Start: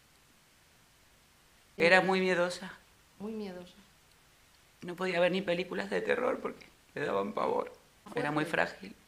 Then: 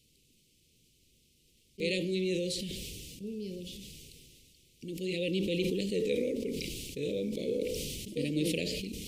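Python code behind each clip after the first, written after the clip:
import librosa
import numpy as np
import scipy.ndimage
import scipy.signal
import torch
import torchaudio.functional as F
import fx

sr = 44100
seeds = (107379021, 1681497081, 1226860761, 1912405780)

y = fx.rider(x, sr, range_db=4, speed_s=0.5)
y = scipy.signal.sosfilt(scipy.signal.cheby2(4, 50, [770.0, 1600.0], 'bandstop', fs=sr, output='sos'), y)
y = fx.sustainer(y, sr, db_per_s=22.0)
y = F.gain(torch.from_numpy(y), 1.5).numpy()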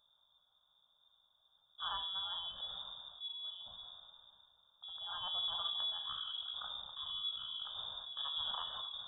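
y = fx.fixed_phaser(x, sr, hz=2200.0, stages=8)
y = fx.comb_fb(y, sr, f0_hz=67.0, decay_s=0.33, harmonics='all', damping=0.0, mix_pct=70)
y = fx.freq_invert(y, sr, carrier_hz=3600)
y = F.gain(torch.from_numpy(y), 3.0).numpy()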